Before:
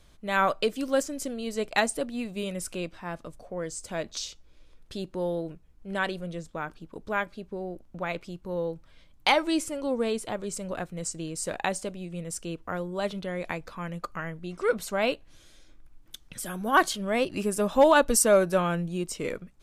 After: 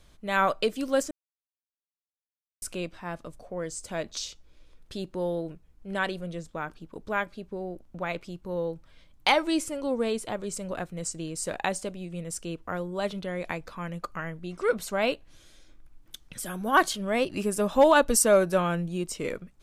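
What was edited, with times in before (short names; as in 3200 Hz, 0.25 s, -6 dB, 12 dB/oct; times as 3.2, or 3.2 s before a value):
1.11–2.62 mute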